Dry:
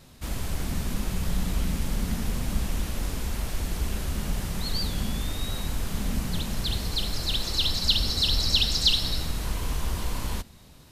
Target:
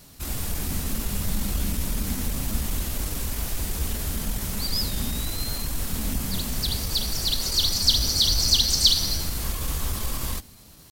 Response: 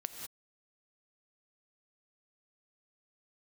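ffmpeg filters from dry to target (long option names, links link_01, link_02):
-af "asetrate=48091,aresample=44100,atempo=0.917004,crystalizer=i=1.5:c=0"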